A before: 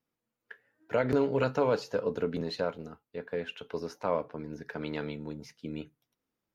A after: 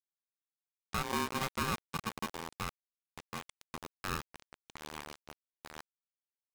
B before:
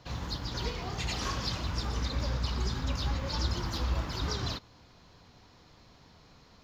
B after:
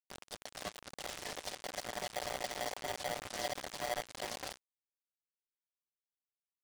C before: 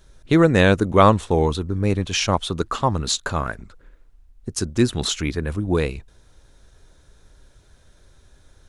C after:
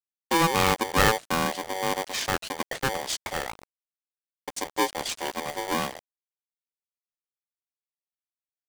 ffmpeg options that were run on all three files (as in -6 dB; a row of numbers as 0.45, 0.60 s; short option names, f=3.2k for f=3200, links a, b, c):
-af "aeval=exprs='val(0)*gte(abs(val(0)),0.0355)':c=same,aresample=22050,aresample=44100,aeval=exprs='val(0)*sgn(sin(2*PI*660*n/s))':c=same,volume=-7.5dB"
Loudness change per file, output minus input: -6.0, -7.5, -6.5 LU